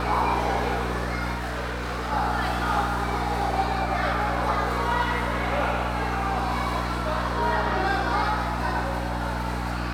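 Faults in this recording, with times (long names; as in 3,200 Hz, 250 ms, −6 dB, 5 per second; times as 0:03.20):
mains hum 60 Hz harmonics 5 −30 dBFS
0:01.35–0:02.13: clipping −26.5 dBFS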